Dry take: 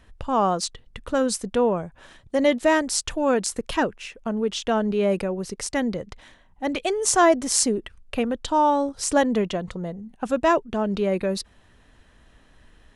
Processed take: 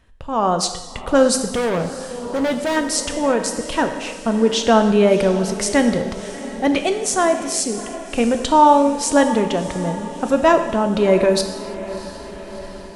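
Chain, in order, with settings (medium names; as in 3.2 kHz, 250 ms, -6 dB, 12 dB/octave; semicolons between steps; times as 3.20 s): level rider gain up to 15.5 dB; on a send: echo that smears into a reverb 678 ms, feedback 59%, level -15 dB; 1.46–2.77 s: on the sum: overload inside the chain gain 15.5 dB; gated-style reverb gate 360 ms falling, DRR 6.5 dB; trim -3 dB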